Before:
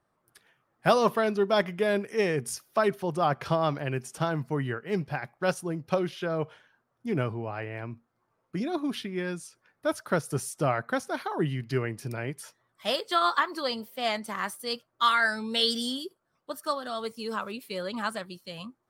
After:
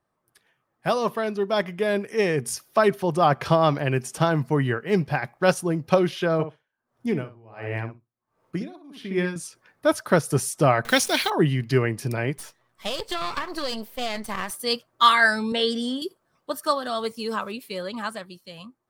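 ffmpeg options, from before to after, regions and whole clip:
ffmpeg -i in.wav -filter_complex "[0:a]asettb=1/sr,asplit=3[link_01][link_02][link_03];[link_01]atrim=end=6.334[link_04];[link_02]atrim=start=6.33:end=9.36,asetpts=PTS-STARTPTS,afade=type=in:duration=0.004:curve=qsin,afade=type=out:start_time=3.026:duration=0.004:curve=qsin,asplit=2[link_05][link_06];[link_06]adelay=62,lowpass=frequency=1800:poles=1,volume=-4.5dB,asplit=2[link_07][link_08];[link_08]adelay=62,lowpass=frequency=1800:poles=1,volume=0.16,asplit=2[link_09][link_10];[link_10]adelay=62,lowpass=frequency=1800:poles=1,volume=0.16[link_11];[link_05][link_07][link_09][link_11]amix=inputs=4:normalize=0,atrim=end_sample=133623,aeval=exprs='val(0)*pow(10,-27*(0.5-0.5*cos(2*PI*1.4*n/s))/20)':channel_layout=same[link_12];[link_03]atrim=start=9.356[link_13];[link_04][link_12]acrossfade=duration=0.004:curve1=hsin:curve2=qsin[link_14];[link_14][link_13]acrossfade=duration=0.004:curve1=qsin:curve2=hsin,asettb=1/sr,asplit=3[link_15][link_16][link_17];[link_15]atrim=end=10.854[link_18];[link_16]atrim=start=10.85:end=11.3,asetpts=PTS-STARTPTS,afade=type=in:duration=0.004:curve=qsin,afade=type=out:start_time=0.446:duration=0.004:curve=qsin,highshelf=frequency=1800:width_type=q:width=1.5:gain=11.5,acrusher=bits=8:dc=4:mix=0:aa=0.000001,acompressor=mode=upward:threshold=-31dB:ratio=2.5:attack=3.2:release=140:knee=2.83:detection=peak[link_19];[link_17]atrim=start=11.296[link_20];[link_18][link_19]acrossfade=duration=0.004:curve1=hsin:curve2=qsin[link_21];[link_21][link_20]acrossfade=duration=0.004:curve1=qsin:curve2=hsin,asettb=1/sr,asplit=3[link_22][link_23][link_24];[link_22]atrim=end=12.374[link_25];[link_23]atrim=start=12.37:end=14.51,asetpts=PTS-STARTPTS,afade=type=in:duration=0.004:curve=qsin,afade=type=out:start_time=2.136:duration=0.004:curve=qsin,aeval=exprs='if(lt(val(0),0),0.251*val(0),val(0))':channel_layout=same,acompressor=threshold=-29dB:ratio=12:attack=3.2:release=140:knee=1:detection=peak[link_26];[link_24]atrim=start=14.506[link_27];[link_25][link_26]acrossfade=duration=0.004:curve1=hsin:curve2=qsin[link_28];[link_28][link_27]acrossfade=duration=0.004:curve1=qsin:curve2=hsin,asettb=1/sr,asplit=3[link_29][link_30][link_31];[link_29]atrim=end=15.524[link_32];[link_30]atrim=start=15.52:end=16.02,asetpts=PTS-STARTPTS,afade=type=in:duration=0.004:curve=qsin,afade=type=out:start_time=0.496:duration=0.004:curve=qsin,highpass=200,lowpass=6100,equalizer=frequency=4600:width_type=o:width=1.6:gain=-11[link_33];[link_31]atrim=start=16.016[link_34];[link_32][link_33]acrossfade=duration=0.004:curve1=hsin:curve2=qsin[link_35];[link_35][link_34]acrossfade=duration=0.004:curve1=qsin:curve2=hsin,bandreject=frequency=1400:width=19,dynaudnorm=framelen=360:gausssize=11:maxgain=11.5dB,volume=-2dB" out.wav

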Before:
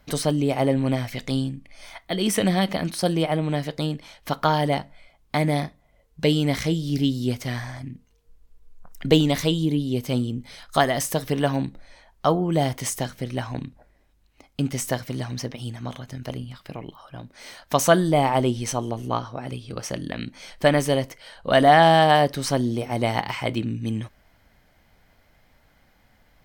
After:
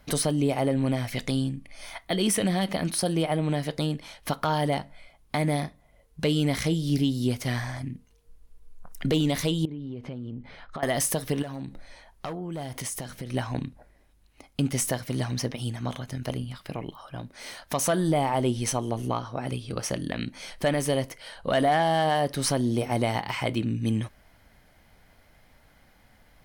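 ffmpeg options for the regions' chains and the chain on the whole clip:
ffmpeg -i in.wav -filter_complex "[0:a]asettb=1/sr,asplit=3[link_01][link_02][link_03];[link_01]atrim=end=9.654[link_04];[link_02]atrim=start=9.65:end=10.83,asetpts=PTS-STARTPTS,afade=type=in:duration=0.004:curve=qsin,afade=type=out:start_time=1.176:duration=0.004:curve=qsin,lowpass=2000,acompressor=threshold=-33dB:ratio=16:attack=3.2:release=140:knee=1:detection=peak[link_05];[link_03]atrim=start=10.826[link_06];[link_04][link_05]acrossfade=duration=0.004:curve1=hsin:curve2=qsin[link_07];[link_07][link_06]acrossfade=duration=0.004:curve1=qsin:curve2=hsin,asettb=1/sr,asplit=3[link_08][link_09][link_10];[link_08]atrim=end=11.424[link_11];[link_09]atrim=start=11.42:end=13.34,asetpts=PTS-STARTPTS,afade=type=in:duration=0.004:curve=qsin,afade=type=out:start_time=1.916:duration=0.004:curve=qsin,volume=16dB,asoftclip=hard,volume=-16dB,acompressor=threshold=-32dB:ratio=10:attack=3.2:release=140:knee=1:detection=peak[link_12];[link_10]atrim=start=13.336[link_13];[link_11][link_12]acrossfade=duration=0.004:curve1=hsin:curve2=qsin[link_14];[link_14][link_13]acrossfade=duration=0.004:curve1=qsin:curve2=hsin,equalizer=frequency=10000:width=6.4:gain=9.5,acontrast=57,alimiter=limit=-10.5dB:level=0:latency=1:release=245,volume=-5dB" out.wav

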